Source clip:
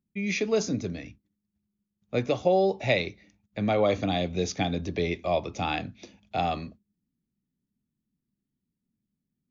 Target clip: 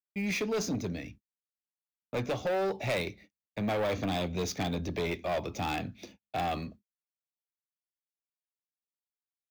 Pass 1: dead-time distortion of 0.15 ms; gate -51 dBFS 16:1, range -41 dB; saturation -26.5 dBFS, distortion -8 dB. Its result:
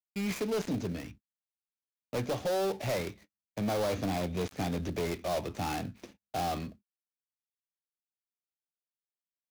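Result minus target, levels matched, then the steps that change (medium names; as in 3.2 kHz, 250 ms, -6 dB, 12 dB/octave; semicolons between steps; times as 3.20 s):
dead-time distortion: distortion +19 dB
change: dead-time distortion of 0.028 ms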